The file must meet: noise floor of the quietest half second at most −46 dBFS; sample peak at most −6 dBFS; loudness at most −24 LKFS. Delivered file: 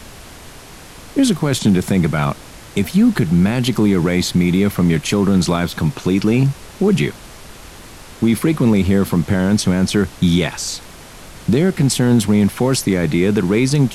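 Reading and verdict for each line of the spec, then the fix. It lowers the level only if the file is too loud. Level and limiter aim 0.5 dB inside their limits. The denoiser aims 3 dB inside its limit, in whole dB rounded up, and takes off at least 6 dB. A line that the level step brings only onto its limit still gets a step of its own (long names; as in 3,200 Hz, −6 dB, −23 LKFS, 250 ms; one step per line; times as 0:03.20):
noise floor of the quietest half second −38 dBFS: out of spec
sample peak −5.0 dBFS: out of spec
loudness −16.5 LKFS: out of spec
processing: broadband denoise 6 dB, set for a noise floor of −38 dBFS
level −8 dB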